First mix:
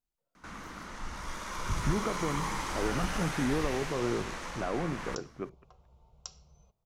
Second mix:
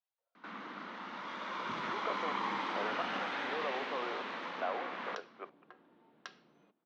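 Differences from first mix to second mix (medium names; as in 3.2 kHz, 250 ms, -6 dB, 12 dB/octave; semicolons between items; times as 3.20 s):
speech: add high-pass 530 Hz 24 dB/octave; second sound: remove static phaser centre 720 Hz, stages 4; master: add Chebyshev band-pass 220–3700 Hz, order 3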